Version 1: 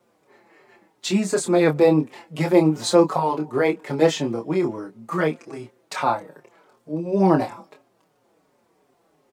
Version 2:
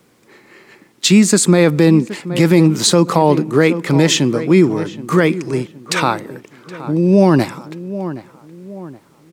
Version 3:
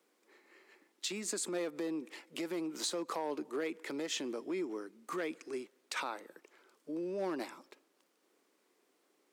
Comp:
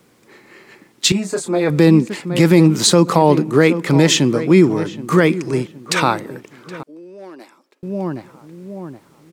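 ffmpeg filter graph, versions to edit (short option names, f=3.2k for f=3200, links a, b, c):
-filter_complex "[1:a]asplit=3[a][b][c];[a]atrim=end=1.122[d];[0:a]atrim=start=1.118:end=1.702[e];[b]atrim=start=1.698:end=6.832[f];[2:a]atrim=start=6.828:end=7.832[g];[c]atrim=start=7.828[h];[d][e]acrossfade=d=0.004:c1=hsin:c2=hsin[i];[i][f]acrossfade=d=0.004:c1=hsin:c2=hsin[j];[j][g]acrossfade=d=0.004:c1=hsin:c2=hsin[k];[k][h]acrossfade=d=0.004:c1=hsin:c2=hsin"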